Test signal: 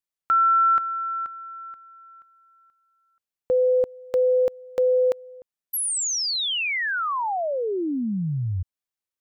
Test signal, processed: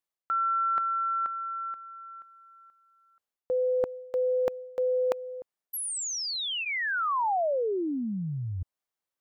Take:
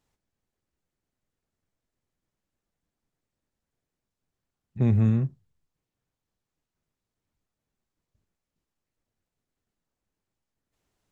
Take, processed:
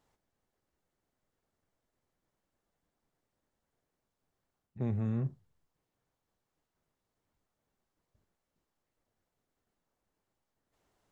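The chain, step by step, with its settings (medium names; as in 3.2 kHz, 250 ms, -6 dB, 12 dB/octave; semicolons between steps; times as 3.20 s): reverse; compression 5:1, threshold -31 dBFS; reverse; peaking EQ 750 Hz +7 dB 2.6 oct; band-stop 2.5 kHz, Q 28; trim -1.5 dB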